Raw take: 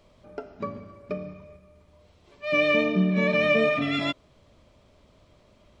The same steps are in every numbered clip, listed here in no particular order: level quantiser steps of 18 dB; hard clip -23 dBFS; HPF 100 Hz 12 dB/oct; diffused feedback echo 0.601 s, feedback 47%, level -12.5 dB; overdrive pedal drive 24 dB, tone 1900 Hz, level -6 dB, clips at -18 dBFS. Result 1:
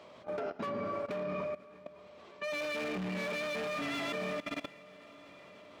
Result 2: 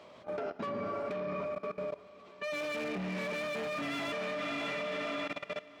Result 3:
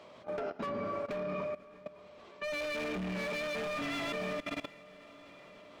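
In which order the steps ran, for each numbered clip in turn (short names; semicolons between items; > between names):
overdrive pedal > diffused feedback echo > hard clip > HPF > level quantiser; hard clip > diffused feedback echo > overdrive pedal > HPF > level quantiser; HPF > overdrive pedal > diffused feedback echo > hard clip > level quantiser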